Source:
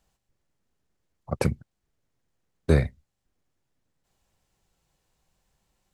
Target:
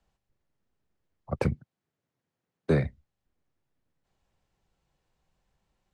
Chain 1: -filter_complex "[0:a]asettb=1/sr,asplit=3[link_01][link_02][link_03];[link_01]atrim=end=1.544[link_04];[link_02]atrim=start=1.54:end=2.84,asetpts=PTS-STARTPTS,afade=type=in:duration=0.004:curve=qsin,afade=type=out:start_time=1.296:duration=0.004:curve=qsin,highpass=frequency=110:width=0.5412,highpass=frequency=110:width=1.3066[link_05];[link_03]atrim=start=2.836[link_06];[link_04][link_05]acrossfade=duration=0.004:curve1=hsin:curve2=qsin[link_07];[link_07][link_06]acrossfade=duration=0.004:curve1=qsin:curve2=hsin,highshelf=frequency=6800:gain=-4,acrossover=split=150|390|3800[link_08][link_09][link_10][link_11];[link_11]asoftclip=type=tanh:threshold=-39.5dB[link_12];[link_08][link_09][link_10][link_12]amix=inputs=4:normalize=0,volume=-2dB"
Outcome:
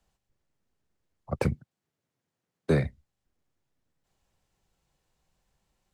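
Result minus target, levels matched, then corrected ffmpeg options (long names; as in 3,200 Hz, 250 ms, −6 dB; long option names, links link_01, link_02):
8,000 Hz band +5.0 dB
-filter_complex "[0:a]asettb=1/sr,asplit=3[link_01][link_02][link_03];[link_01]atrim=end=1.544[link_04];[link_02]atrim=start=1.54:end=2.84,asetpts=PTS-STARTPTS,afade=type=in:duration=0.004:curve=qsin,afade=type=out:start_time=1.296:duration=0.004:curve=qsin,highpass=frequency=110:width=0.5412,highpass=frequency=110:width=1.3066[link_05];[link_03]atrim=start=2.836[link_06];[link_04][link_05]acrossfade=duration=0.004:curve1=hsin:curve2=qsin[link_07];[link_07][link_06]acrossfade=duration=0.004:curve1=qsin:curve2=hsin,highshelf=frequency=6800:gain=-16,acrossover=split=150|390|3800[link_08][link_09][link_10][link_11];[link_11]asoftclip=type=tanh:threshold=-39.5dB[link_12];[link_08][link_09][link_10][link_12]amix=inputs=4:normalize=0,volume=-2dB"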